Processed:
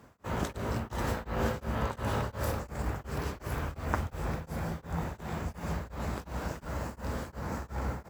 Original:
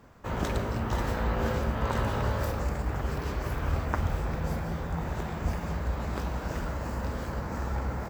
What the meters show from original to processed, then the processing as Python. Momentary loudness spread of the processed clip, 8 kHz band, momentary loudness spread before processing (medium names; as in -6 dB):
5 LU, 0.0 dB, 5 LU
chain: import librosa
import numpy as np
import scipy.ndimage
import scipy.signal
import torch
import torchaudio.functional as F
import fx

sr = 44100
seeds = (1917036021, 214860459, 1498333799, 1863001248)

y = scipy.signal.sosfilt(scipy.signal.butter(2, 57.0, 'highpass', fs=sr, output='sos'), x)
y = fx.peak_eq(y, sr, hz=10000.0, db=6.0, octaves=0.96)
y = y * np.abs(np.cos(np.pi * 2.8 * np.arange(len(y)) / sr))